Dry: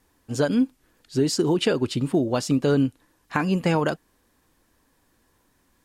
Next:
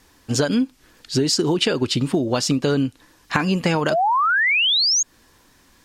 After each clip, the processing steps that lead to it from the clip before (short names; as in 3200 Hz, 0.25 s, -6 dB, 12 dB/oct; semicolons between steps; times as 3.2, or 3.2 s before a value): EQ curve 640 Hz 0 dB, 5300 Hz +7 dB, 10000 Hz 0 dB; painted sound rise, 3.9–5.03, 590–6800 Hz -21 dBFS; compressor 4:1, threshold -26 dBFS, peak gain reduction 9 dB; gain +8.5 dB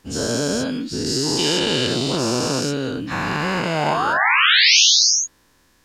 spectral dilation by 0.48 s; gain -9.5 dB